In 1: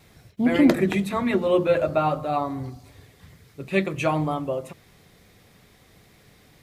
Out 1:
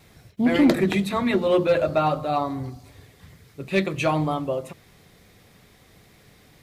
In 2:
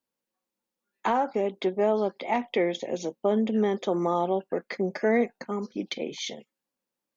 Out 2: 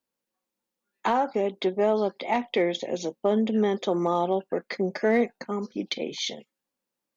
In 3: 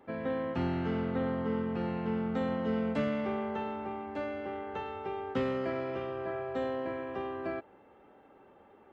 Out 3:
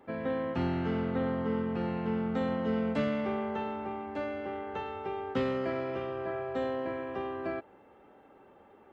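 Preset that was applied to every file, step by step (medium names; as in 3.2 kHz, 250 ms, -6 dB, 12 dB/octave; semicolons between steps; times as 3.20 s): dynamic bell 4.1 kHz, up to +5 dB, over -51 dBFS, Q 2; in parallel at -9.5 dB: wavefolder -15.5 dBFS; on the sum: trim -1.5 dB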